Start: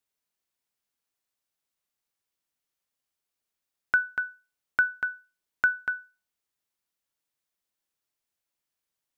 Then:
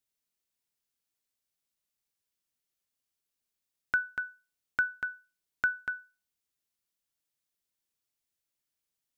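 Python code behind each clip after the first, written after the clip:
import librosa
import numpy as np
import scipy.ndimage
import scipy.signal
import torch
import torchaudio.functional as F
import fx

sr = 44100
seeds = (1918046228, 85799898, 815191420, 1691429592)

y = fx.peak_eq(x, sr, hz=970.0, db=-6.0, octaves=2.6)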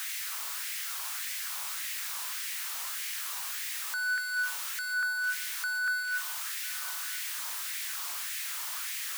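y = np.sign(x) * np.sqrt(np.mean(np.square(x)))
y = fx.filter_lfo_highpass(y, sr, shape='sine', hz=1.7, low_hz=980.0, high_hz=2000.0, q=2.7)
y = y + 10.0 ** (-16.5 / 20.0) * np.pad(y, (int(998 * sr / 1000.0), 0))[:len(y)]
y = y * 10.0 ** (5.5 / 20.0)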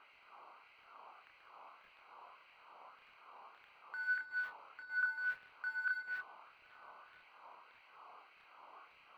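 y = fx.wiener(x, sr, points=25)
y = fx.chorus_voices(y, sr, voices=6, hz=0.86, base_ms=28, depth_ms=1.4, mix_pct=35)
y = fx.air_absorb(y, sr, metres=430.0)
y = y * 10.0 ** (2.0 / 20.0)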